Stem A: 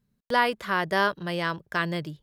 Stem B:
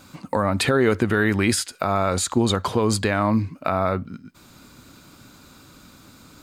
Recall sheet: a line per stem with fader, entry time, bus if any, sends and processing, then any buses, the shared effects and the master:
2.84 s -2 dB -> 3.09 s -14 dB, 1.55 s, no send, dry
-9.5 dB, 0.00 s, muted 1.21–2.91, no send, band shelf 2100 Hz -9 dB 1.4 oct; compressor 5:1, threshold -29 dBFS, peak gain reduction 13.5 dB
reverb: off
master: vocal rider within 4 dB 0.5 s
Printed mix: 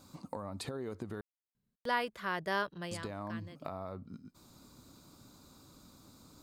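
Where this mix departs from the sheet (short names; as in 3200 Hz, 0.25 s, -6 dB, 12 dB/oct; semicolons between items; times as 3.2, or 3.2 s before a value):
stem A -2.0 dB -> -10.0 dB; master: missing vocal rider within 4 dB 0.5 s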